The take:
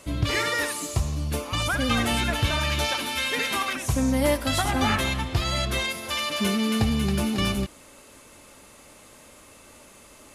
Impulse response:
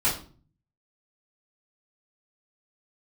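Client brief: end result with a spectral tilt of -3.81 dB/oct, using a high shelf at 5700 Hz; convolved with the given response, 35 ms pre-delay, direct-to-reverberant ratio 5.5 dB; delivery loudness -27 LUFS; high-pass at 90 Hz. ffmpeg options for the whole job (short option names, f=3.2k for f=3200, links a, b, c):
-filter_complex "[0:a]highpass=90,highshelf=f=5.7k:g=8.5,asplit=2[a][b];[1:a]atrim=start_sample=2205,adelay=35[c];[b][c]afir=irnorm=-1:irlink=0,volume=-17.5dB[d];[a][d]amix=inputs=2:normalize=0,volume=-4.5dB"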